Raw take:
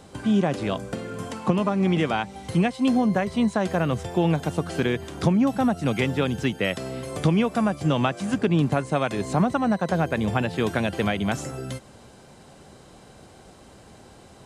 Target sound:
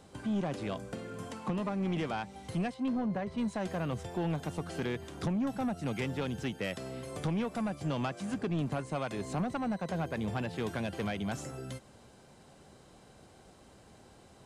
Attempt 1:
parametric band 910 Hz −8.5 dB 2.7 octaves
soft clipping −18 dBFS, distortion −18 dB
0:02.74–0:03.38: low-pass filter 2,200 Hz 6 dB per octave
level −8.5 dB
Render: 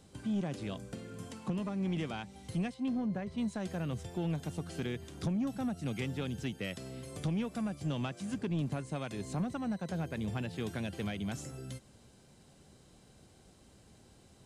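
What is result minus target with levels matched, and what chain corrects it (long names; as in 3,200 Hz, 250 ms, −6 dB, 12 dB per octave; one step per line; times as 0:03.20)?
1,000 Hz band −4.5 dB
soft clipping −18 dBFS, distortion −14 dB
0:02.74–0:03.38: low-pass filter 2,200 Hz 6 dB per octave
level −8.5 dB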